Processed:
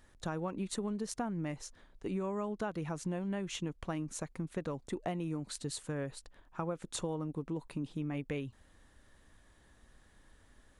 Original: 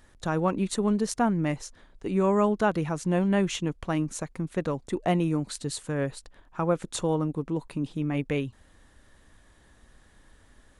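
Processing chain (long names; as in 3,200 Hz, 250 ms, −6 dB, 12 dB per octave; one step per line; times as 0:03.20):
downward compressor 10 to 1, threshold −27 dBFS, peak gain reduction 9.5 dB
level −5.5 dB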